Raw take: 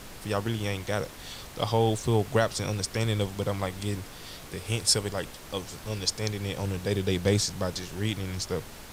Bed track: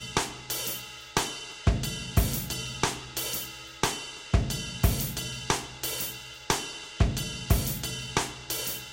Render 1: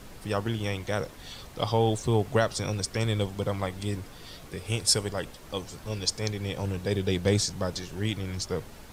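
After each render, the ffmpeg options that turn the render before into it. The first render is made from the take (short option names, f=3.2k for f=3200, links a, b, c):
-af "afftdn=nr=6:nf=-45"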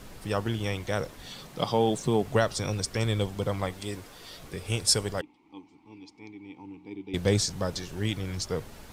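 -filter_complex "[0:a]asettb=1/sr,asplit=3[a][b][c];[a]atrim=end=1.264[d];[b]atrim=start=1.26:end=2.23,asetpts=PTS-STARTPTS,afade=t=in:d=0.004:c=qsin,afade=t=out:st=0.966:d=0.004:c=qsin,lowshelf=f=120:t=q:w=3:g=-7[e];[c]atrim=start=2.226[f];[d][e]acrossfade=d=0.004:c1=hsin:c2=qsin[g];[g][f]acrossfade=d=0.004:c1=qsin:c2=hsin,asettb=1/sr,asplit=3[h][i][j];[h]atrim=end=3.734[k];[i]atrim=start=3.73:end=4.39,asetpts=PTS-STARTPTS,afade=t=in:d=0.004:c=qsin,afade=t=out:st=0.656:d=0.004:c=qsin,bass=f=250:g=-8,treble=f=4k:g=1[l];[j]atrim=start=4.386[m];[k][l]acrossfade=d=0.004:c1=hsin:c2=qsin[n];[n][m]acrossfade=d=0.004:c1=qsin:c2=hsin,asettb=1/sr,asplit=3[o][p][q];[o]atrim=end=5.214[r];[p]atrim=start=5.21:end=7.14,asetpts=PTS-STARTPTS,afade=t=in:d=0.004:c=qsin,afade=t=out:st=1.926:d=0.004:c=qsin,asplit=3[s][t][u];[s]bandpass=f=300:t=q:w=8,volume=0dB[v];[t]bandpass=f=870:t=q:w=8,volume=-6dB[w];[u]bandpass=f=2.24k:t=q:w=8,volume=-9dB[x];[v][w][x]amix=inputs=3:normalize=0[y];[q]atrim=start=7.136[z];[r][y]acrossfade=d=0.004:c1=hsin:c2=qsin[aa];[aa][z]acrossfade=d=0.004:c1=qsin:c2=hsin"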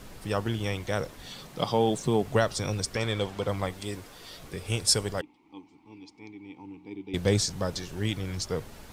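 -filter_complex "[0:a]asettb=1/sr,asplit=3[a][b][c];[a]atrim=end=2.964[d];[b]atrim=start=2.96:end=3.48,asetpts=PTS-STARTPTS,afade=t=in:d=0.004:c=qsin,afade=t=out:st=0.516:d=0.004:c=qsin,asplit=2[e][f];[f]highpass=f=720:p=1,volume=10dB,asoftclip=type=tanh:threshold=-14.5dB[g];[e][g]amix=inputs=2:normalize=0,lowpass=f=3.1k:p=1,volume=-6dB[h];[c]atrim=start=3.476[i];[d][h]acrossfade=d=0.004:c1=hsin:c2=qsin[j];[j][i]acrossfade=d=0.004:c1=qsin:c2=hsin"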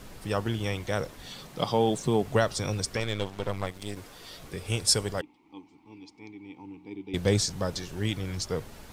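-filter_complex "[0:a]asettb=1/sr,asplit=3[a][b][c];[a]atrim=end=3.004[d];[b]atrim=start=3:end=3.97,asetpts=PTS-STARTPTS,afade=t=in:d=0.004:c=qsin,afade=t=out:st=0.966:d=0.004:c=qsin,aeval=exprs='if(lt(val(0),0),0.251*val(0),val(0))':c=same[e];[c]atrim=start=3.966[f];[d][e]acrossfade=d=0.004:c1=hsin:c2=qsin[g];[g][f]acrossfade=d=0.004:c1=qsin:c2=hsin"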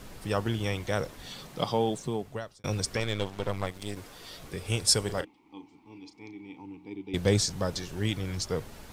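-filter_complex "[0:a]asettb=1/sr,asplit=3[a][b][c];[a]atrim=end=5.024[d];[b]atrim=start=5.02:end=6.62,asetpts=PTS-STARTPTS,afade=t=in:d=0.004:c=qsin,afade=t=out:st=1.596:d=0.004:c=qsin,asplit=2[e][f];[f]adelay=35,volume=-10dB[g];[e][g]amix=inputs=2:normalize=0,atrim=end_sample=70560[h];[c]atrim=start=6.616[i];[d][h]acrossfade=d=0.004:c1=hsin:c2=qsin[j];[j][i]acrossfade=d=0.004:c1=qsin:c2=hsin,asplit=2[k][l];[k]atrim=end=2.64,asetpts=PTS-STARTPTS,afade=t=out:st=1.51:d=1.13[m];[l]atrim=start=2.64,asetpts=PTS-STARTPTS,afade=t=in:d=0.004:c=hsin[n];[m][n]concat=n=2:v=0:a=1"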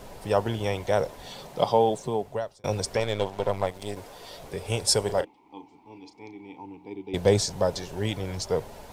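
-af "superequalizer=7b=2:8b=2.82:9b=2.51"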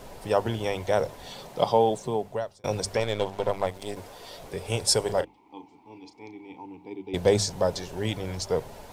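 -af "bandreject=f=50:t=h:w=6,bandreject=f=100:t=h:w=6,bandreject=f=150:t=h:w=6,bandreject=f=200:t=h:w=6"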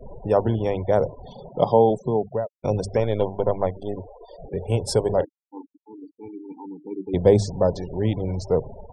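-af "afftfilt=real='re*gte(hypot(re,im),0.0178)':imag='im*gte(hypot(re,im),0.0178)':win_size=1024:overlap=0.75,tiltshelf=f=1.1k:g=8"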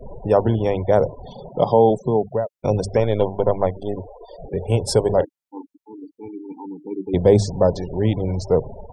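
-af "volume=3.5dB,alimiter=limit=-3dB:level=0:latency=1"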